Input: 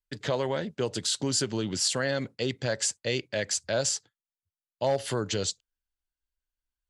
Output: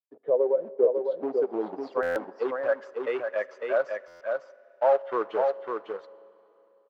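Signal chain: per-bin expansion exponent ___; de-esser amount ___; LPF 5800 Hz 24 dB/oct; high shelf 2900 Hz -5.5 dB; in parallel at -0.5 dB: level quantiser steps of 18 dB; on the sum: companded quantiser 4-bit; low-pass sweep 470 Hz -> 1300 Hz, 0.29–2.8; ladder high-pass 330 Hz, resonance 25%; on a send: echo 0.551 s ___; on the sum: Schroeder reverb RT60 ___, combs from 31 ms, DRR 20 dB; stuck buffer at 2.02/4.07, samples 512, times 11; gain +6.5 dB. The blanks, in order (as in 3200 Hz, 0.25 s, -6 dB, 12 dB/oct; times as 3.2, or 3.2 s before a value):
2, 25%, -4.5 dB, 3.1 s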